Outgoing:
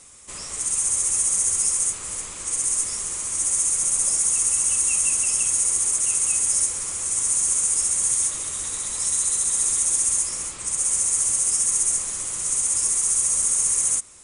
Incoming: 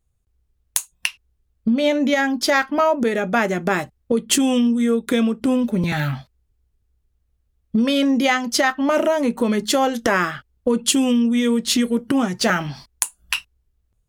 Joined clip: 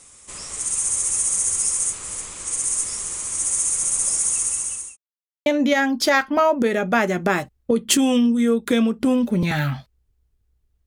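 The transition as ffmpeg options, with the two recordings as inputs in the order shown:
-filter_complex "[0:a]apad=whole_dur=10.86,atrim=end=10.86,asplit=2[a][b];[a]atrim=end=4.97,asetpts=PTS-STARTPTS,afade=t=out:st=4.14:d=0.83:c=qsin[c];[b]atrim=start=4.97:end=5.46,asetpts=PTS-STARTPTS,volume=0[d];[1:a]atrim=start=1.87:end=7.27,asetpts=PTS-STARTPTS,afade=t=in:d=0.004:c=hsin[e];[c][d][e]concat=n=3:v=0:a=1"

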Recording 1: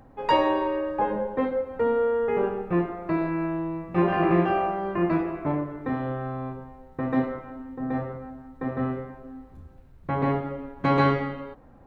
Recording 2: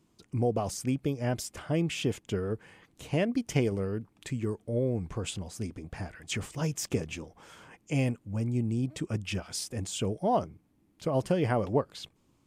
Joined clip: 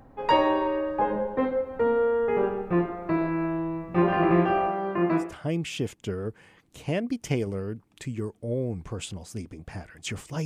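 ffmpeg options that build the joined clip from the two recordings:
-filter_complex "[0:a]asettb=1/sr,asplit=3[a][b][c];[a]atrim=end=4.684[d];[b]atrim=start=4.68:end=5.35,asetpts=PTS-STARTPTS,afade=t=in:d=0.004:c=qsin,afade=t=out:st=0.666:d=0.004:c=qsin,highpass=130[e];[c]atrim=start=5.346[f];[d][e]acrossfade=d=0.004:c1=hsin:c2=qsin[g];[g][f]acrossfade=d=0.004:c1=qsin:c2=hsin,apad=whole_dur=10.45,atrim=end=10.45,atrim=end=5.35,asetpts=PTS-STARTPTS[h];[1:a]atrim=start=1.42:end=6.7,asetpts=PTS-STARTPTS[i];[h][i]acrossfade=d=0.18:c1=tri:c2=tri"

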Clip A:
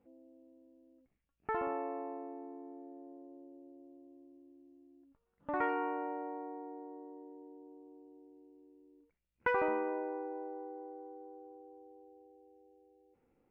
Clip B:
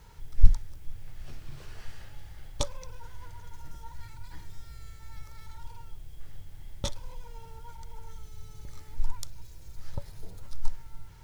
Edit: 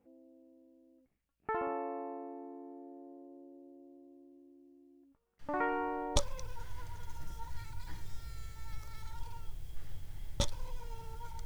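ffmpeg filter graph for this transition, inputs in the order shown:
-filter_complex "[1:a]asplit=2[a][b];[0:a]apad=whole_dur=11.45,atrim=end=11.45,atrim=end=6.162[c];[b]atrim=start=2.598:end=7.89[d];[a]atrim=start=1.83:end=2.6,asetpts=PTS-STARTPTS,volume=-14.5dB,afade=t=in:d=0.004:c=hsin,afade=t=out:st=0.766:d=0.004:c=hsin,adelay=5390[e];[c][d]acrossfade=d=0.004:c1=hsin:c2=hsin[f];[f][e]amix=inputs=2:normalize=0"

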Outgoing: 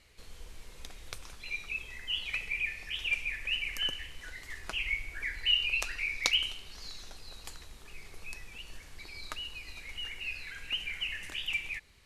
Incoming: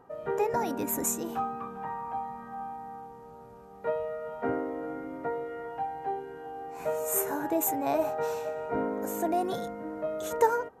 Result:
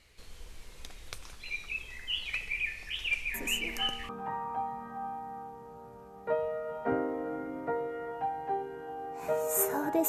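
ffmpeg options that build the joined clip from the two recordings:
-filter_complex "[1:a]asplit=2[a][b];[0:a]apad=whole_dur=10.08,atrim=end=10.08,atrim=end=4.092[c];[b]atrim=start=1.658:end=7.65[d];[a]atrim=start=0.91:end=1.66,asetpts=PTS-STARTPTS,volume=-9dB,afade=t=in:d=0.004:c=hsin,afade=t=out:st=0.746:d=0.004:c=hsin,adelay=3340[e];[c][d]acrossfade=d=0.004:c1=hsin:c2=hsin[f];[f][e]amix=inputs=2:normalize=0"

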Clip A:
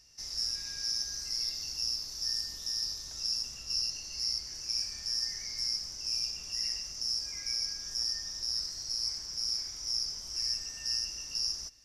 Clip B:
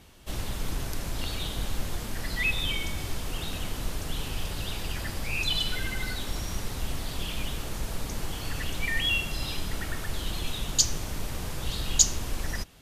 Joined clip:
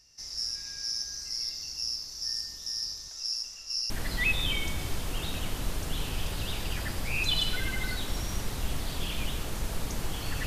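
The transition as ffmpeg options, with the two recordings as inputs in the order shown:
-filter_complex "[0:a]asettb=1/sr,asplit=3[a][b][c];[a]atrim=end=3.084[d];[b]atrim=start=3.08:end=3.9,asetpts=PTS-STARTPTS,afade=t=in:d=0.004:c=qsin,afade=t=out:st=0.816:d=0.004:c=qsin,equalizer=f=110:w=0.45:g=-13.5[e];[c]atrim=start=3.896[f];[d][e]acrossfade=d=0.004:c1=hsin:c2=qsin[g];[g][f]acrossfade=d=0.004:c1=qsin:c2=hsin,apad=whole_dur=10.46,atrim=end=10.46,atrim=end=3.902[h];[1:a]atrim=start=2.088:end=8.65[i];[h][i]acrossfade=d=0.004:c1=hsin:c2=hsin"

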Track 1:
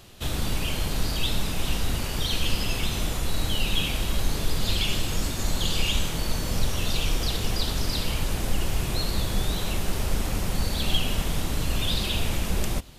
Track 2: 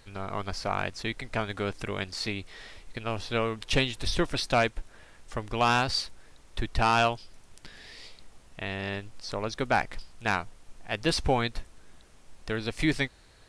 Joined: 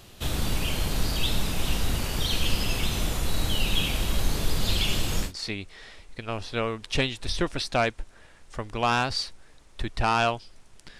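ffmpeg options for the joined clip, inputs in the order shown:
-filter_complex "[0:a]apad=whole_dur=10.99,atrim=end=10.99,atrim=end=5.33,asetpts=PTS-STARTPTS[a];[1:a]atrim=start=1.97:end=7.77,asetpts=PTS-STARTPTS[b];[a][b]acrossfade=d=0.14:c1=tri:c2=tri"

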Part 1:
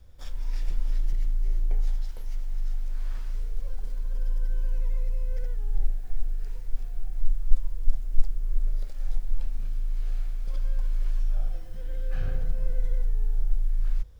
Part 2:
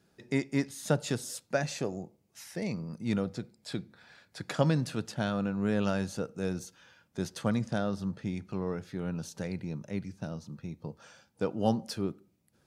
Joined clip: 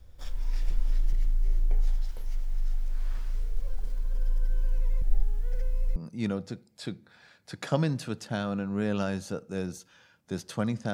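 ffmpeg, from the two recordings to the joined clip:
-filter_complex "[0:a]apad=whole_dur=10.93,atrim=end=10.93,asplit=2[a][b];[a]atrim=end=5.022[c];[b]atrim=start=5.018:end=5.962,asetpts=PTS-STARTPTS,areverse[d];[1:a]atrim=start=2.828:end=7.8[e];[c][d]acrossfade=d=0.004:c1=hsin:c2=hsin[f];[f][e]acrossfade=d=0.004:c1=hsin:c2=hsin"

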